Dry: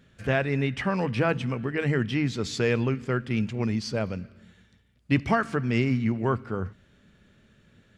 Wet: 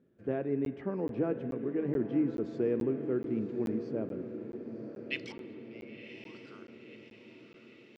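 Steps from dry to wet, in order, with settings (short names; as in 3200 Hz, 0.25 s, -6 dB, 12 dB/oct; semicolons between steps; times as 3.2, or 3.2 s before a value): 5.32–6.35 vowel filter u; spring tank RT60 3.1 s, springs 35 ms, chirp 65 ms, DRR 11.5 dB; band-pass sweep 340 Hz -> 4300 Hz, 4.65–5.21; diffused feedback echo 1.035 s, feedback 56%, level -10 dB; crackling interface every 0.43 s, samples 512, zero, from 0.65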